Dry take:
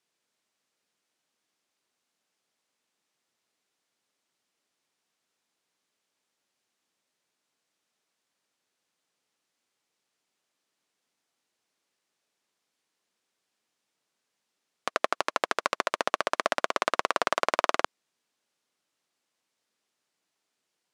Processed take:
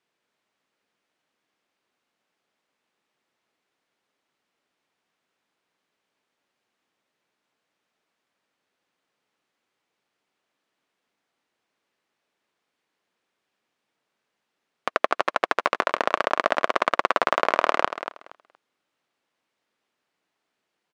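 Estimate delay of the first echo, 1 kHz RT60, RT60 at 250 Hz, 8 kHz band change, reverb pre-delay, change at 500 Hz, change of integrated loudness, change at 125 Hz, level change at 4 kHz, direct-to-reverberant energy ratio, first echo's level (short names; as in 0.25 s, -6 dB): 0.235 s, none, none, -5.0 dB, none, +5.0 dB, +5.0 dB, n/a, +1.0 dB, none, -10.5 dB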